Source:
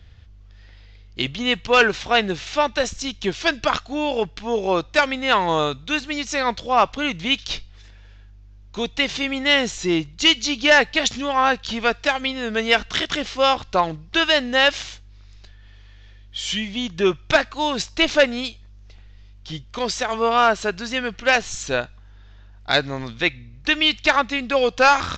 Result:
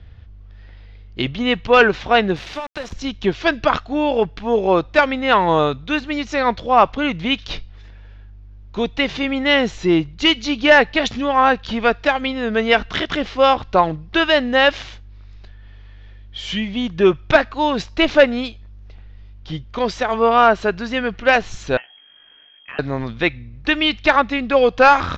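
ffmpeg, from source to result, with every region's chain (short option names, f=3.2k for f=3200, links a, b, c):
-filter_complex "[0:a]asettb=1/sr,asplit=3[a][b][c];[a]atrim=end=2.364[d];[b]atrim=start=2.36:end=2.93,asetpts=PTS-STARTPTS,afade=t=in:d=0.004:c=qsin,afade=t=out:st=0.566:d=0.004:c=qsin,equalizer=f=4.8k:w=0.77:g=4,acompressor=threshold=-26dB:ratio=8:attack=3.2:release=140:knee=1:detection=peak,aeval=exprs='val(0)*gte(abs(val(0)),0.0266)':c=same[e];[c]atrim=start=2.926[f];[d][e]acrossfade=d=0.004:c1=hsin:c2=qsin[g];[g][f]acrossfade=d=0.004:c1=qsin:c2=hsin,asettb=1/sr,asplit=3[h][i][j];[h]atrim=end=21.774[k];[i]atrim=start=21.77:end=22.79,asetpts=PTS-STARTPTS,afade=t=in:d=0.004:c=qsin,afade=t=out:st=1.016:d=0.004:c=qsin,lowpass=f=2.8k:t=q:w=0.5098,lowpass=f=2.8k:t=q:w=0.6013,lowpass=f=2.8k:t=q:w=0.9,lowpass=f=2.8k:t=q:w=2.563,afreqshift=-3300,acompressor=threshold=-34dB:ratio=5:attack=3.2:release=140:knee=1:detection=peak,asplit=2[l][m];[m]adelay=14,volume=-7.5dB[n];[l][n]amix=inputs=2:normalize=0,atrim=end_sample=44982[o];[j]atrim=start=22.786[p];[k][o]acrossfade=d=0.004:c1=hsin:c2=qsin[q];[q][p]acrossfade=d=0.004:c1=qsin:c2=hsin,lowpass=4.7k,highshelf=f=2.2k:g=-9,volume=5.5dB"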